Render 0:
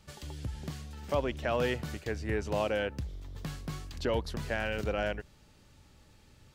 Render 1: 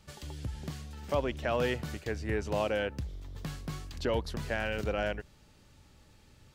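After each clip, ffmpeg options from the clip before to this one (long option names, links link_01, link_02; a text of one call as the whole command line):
ffmpeg -i in.wav -af anull out.wav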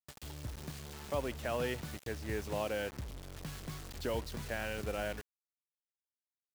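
ffmpeg -i in.wav -af "acrusher=bits=6:mix=0:aa=0.000001,volume=-5.5dB" out.wav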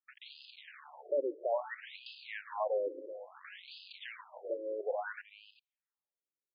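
ffmpeg -i in.wav -af "aecho=1:1:380:0.224,afftfilt=real='re*between(b*sr/1024,400*pow(3600/400,0.5+0.5*sin(2*PI*0.59*pts/sr))/1.41,400*pow(3600/400,0.5+0.5*sin(2*PI*0.59*pts/sr))*1.41)':imag='im*between(b*sr/1024,400*pow(3600/400,0.5+0.5*sin(2*PI*0.59*pts/sr))/1.41,400*pow(3600/400,0.5+0.5*sin(2*PI*0.59*pts/sr))*1.41)':win_size=1024:overlap=0.75,volume=5.5dB" out.wav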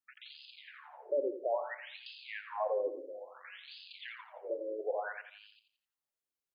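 ffmpeg -i in.wav -af "aecho=1:1:86|172|258|344:0.316|0.111|0.0387|0.0136" out.wav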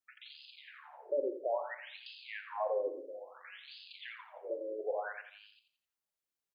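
ffmpeg -i in.wav -filter_complex "[0:a]asplit=2[link_01][link_02];[link_02]adelay=42,volume=-13.5dB[link_03];[link_01][link_03]amix=inputs=2:normalize=0,volume=-1dB" out.wav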